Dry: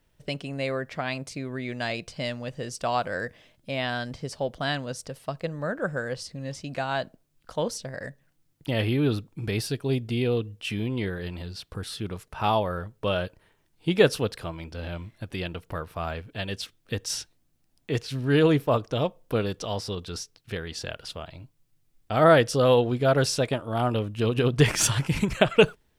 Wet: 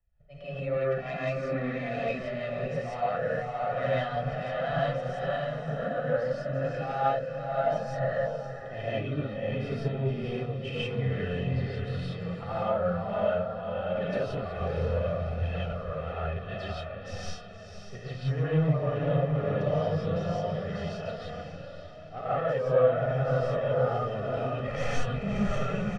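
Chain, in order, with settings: tracing distortion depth 0.048 ms; LPF 1800 Hz 12 dB/oct; notch 1100 Hz, Q 14; comb 1.6 ms, depth 81%; auto swell 0.139 s; diffused feedback echo 0.562 s, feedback 52%, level -6 dB; compressor 8:1, threshold -27 dBFS, peak gain reduction 16 dB; flange 0.13 Hz, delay 1.1 ms, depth 6.3 ms, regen +43%; soft clip -26.5 dBFS, distortion -21 dB; non-linear reverb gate 0.2 s rising, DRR -7 dB; three-band expander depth 40%

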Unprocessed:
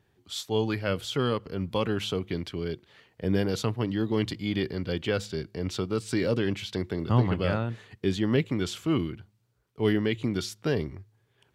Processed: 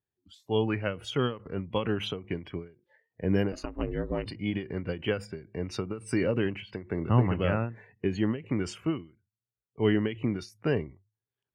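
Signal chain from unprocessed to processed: 3.52–4.26 ring modulator 160 Hz; spectral noise reduction 25 dB; ending taper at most 160 dB/s

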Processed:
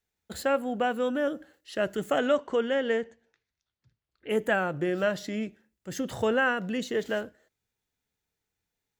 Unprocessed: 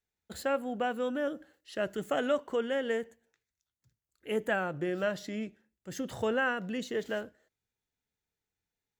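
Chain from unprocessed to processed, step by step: 2.18–4.29 LPF 8300 Hz -> 4200 Hz 24 dB/oct; gain +4.5 dB

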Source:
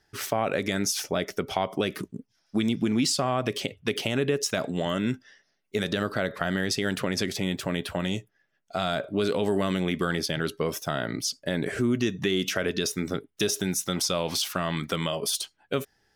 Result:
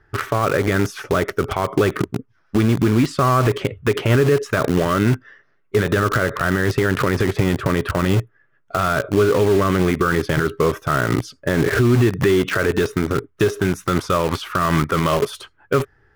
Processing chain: EQ curve 120 Hz 0 dB, 200 Hz -12 dB, 400 Hz -4 dB, 760 Hz -13 dB, 1200 Hz 0 dB, 5100 Hz -27 dB; in parallel at -5.5 dB: bit-crush 6-bit; on the sum: maximiser +24 dB; gain -7 dB

